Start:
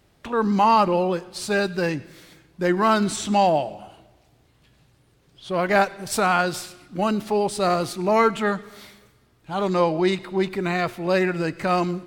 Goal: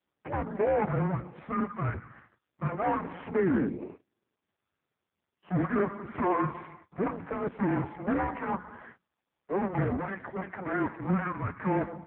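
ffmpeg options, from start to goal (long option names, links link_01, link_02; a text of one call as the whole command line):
ffmpeg -i in.wav -af "agate=range=-26dB:threshold=-46dB:ratio=16:detection=peak,bandreject=frequency=50:width_type=h:width=6,bandreject=frequency=100:width_type=h:width=6,bandreject=frequency=150:width_type=h:width=6,bandreject=frequency=200:width_type=h:width=6,bandreject=frequency=250:width_type=h:width=6,aresample=11025,asoftclip=type=hard:threshold=-20.5dB,aresample=44100,aeval=exprs='0.133*(cos(1*acos(clip(val(0)/0.133,-1,1)))-cos(1*PI/2))+0.00133*(cos(3*acos(clip(val(0)/0.133,-1,1)))-cos(3*PI/2))+0.0211*(cos(5*acos(clip(val(0)/0.133,-1,1)))-cos(5*PI/2))':channel_layout=same,highpass=frequency=320:width_type=q:width=0.5412,highpass=frequency=320:width_type=q:width=1.307,lowpass=frequency=2300:width_type=q:width=0.5176,lowpass=frequency=2300:width_type=q:width=0.7071,lowpass=frequency=2300:width_type=q:width=1.932,afreqshift=-380" -ar 8000 -c:a libopencore_amrnb -b:a 4750 out.amr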